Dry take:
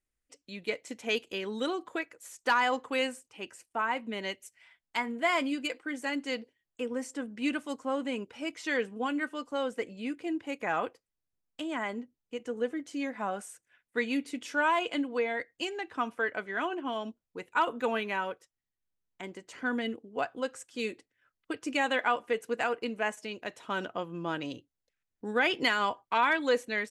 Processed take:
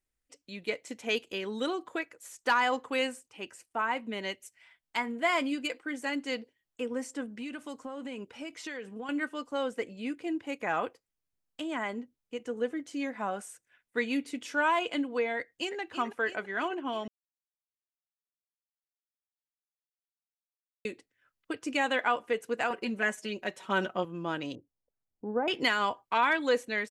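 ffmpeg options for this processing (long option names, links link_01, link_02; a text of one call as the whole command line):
ffmpeg -i in.wav -filter_complex "[0:a]asettb=1/sr,asplit=3[link_01][link_02][link_03];[link_01]atrim=end=7.294[link_04];[link_02]atrim=start=7.29:end=9.09,asetpts=PTS-STARTPTS,afade=type=in:duration=0.004:curve=qsin,afade=type=out:start_time=1.796:duration=0.004:curve=qsin,acompressor=threshold=-35dB:ratio=10:attack=3.2:release=140:knee=1:detection=peak[link_05];[link_03]atrim=start=9.086[link_06];[link_04][link_05]acrossfade=duration=0.004:curve1=hsin:curve2=qsin[link_07];[link_07][link_06]acrossfade=duration=0.004:curve1=qsin:curve2=hsin,asplit=2[link_08][link_09];[link_09]afade=type=in:start_time=15.38:duration=0.01,afade=type=out:start_time=15.79:duration=0.01,aecho=0:1:330|660|990|1320|1650|1980|2310|2640|2970:0.354813|0.230629|0.149909|0.0974406|0.0633364|0.0411687|0.0267596|0.0173938|0.0113059[link_10];[link_08][link_10]amix=inputs=2:normalize=0,asettb=1/sr,asplit=3[link_11][link_12][link_13];[link_11]atrim=end=22.704[link_14];[link_12]atrim=start=22.7:end=24.05,asetpts=PTS-STARTPTS,afade=type=in:duration=0.004:curve=qsin,afade=type=out:start_time=1.346:duration=0.004:curve=qsin,aecho=1:1:5.3:0.94,atrim=end_sample=59535[link_15];[link_13]atrim=start=24.046[link_16];[link_14][link_15]acrossfade=duration=0.004:curve1=hsin:curve2=qsin[link_17];[link_17][link_16]acrossfade=duration=0.004:curve1=qsin:curve2=hsin,asettb=1/sr,asplit=3[link_18][link_19][link_20];[link_18]atrim=end=24.554[link_21];[link_19]atrim=start=24.55:end=25.48,asetpts=PTS-STARTPTS,afade=type=in:duration=0.004:curve=qsin,afade=type=out:start_time=0.926:duration=0.004:curve=qsin,lowpass=frequency=1000:width=0.5412,lowpass=frequency=1000:width=1.3066[link_22];[link_20]atrim=start=25.476[link_23];[link_21][link_22]acrossfade=duration=0.004:curve1=hsin:curve2=qsin[link_24];[link_24][link_23]acrossfade=duration=0.004:curve1=qsin:curve2=hsin,asplit=3[link_25][link_26][link_27];[link_25]atrim=end=17.08,asetpts=PTS-STARTPTS,afade=type=out:start_time=17.076:duration=0.004:curve=hsin[link_28];[link_26]atrim=start=17.08:end=20.85,asetpts=PTS-STARTPTS,volume=0[link_29];[link_27]atrim=start=20.85,asetpts=PTS-STARTPTS,afade=type=in:duration=0.004:curve=hsin[link_30];[link_28][link_29][link_30]concat=n=3:v=0:a=1" out.wav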